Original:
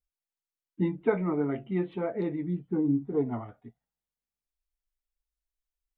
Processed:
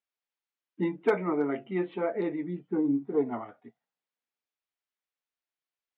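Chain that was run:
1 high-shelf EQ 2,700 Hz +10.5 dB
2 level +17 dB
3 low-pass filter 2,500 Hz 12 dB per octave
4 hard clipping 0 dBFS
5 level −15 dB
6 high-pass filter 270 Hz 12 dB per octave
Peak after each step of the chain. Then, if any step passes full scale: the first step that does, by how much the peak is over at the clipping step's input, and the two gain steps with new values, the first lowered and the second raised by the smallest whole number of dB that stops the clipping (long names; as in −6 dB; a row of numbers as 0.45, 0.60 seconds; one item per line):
−11.5, +5.5, +5.5, 0.0, −15.0, −12.0 dBFS
step 2, 5.5 dB
step 2 +11 dB, step 5 −9 dB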